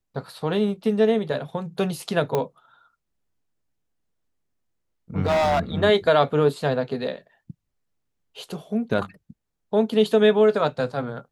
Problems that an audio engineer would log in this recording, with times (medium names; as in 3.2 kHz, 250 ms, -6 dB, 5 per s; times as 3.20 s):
2.35 s: pop -11 dBFS
5.26–5.60 s: clipped -17.5 dBFS